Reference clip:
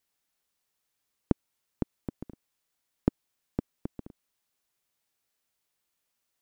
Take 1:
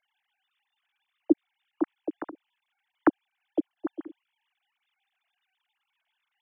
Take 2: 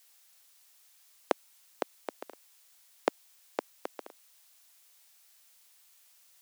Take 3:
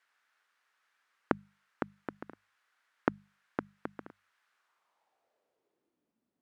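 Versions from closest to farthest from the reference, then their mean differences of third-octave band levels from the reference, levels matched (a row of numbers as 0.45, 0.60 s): 3, 1, 2; 7.0, 9.5, 17.0 dB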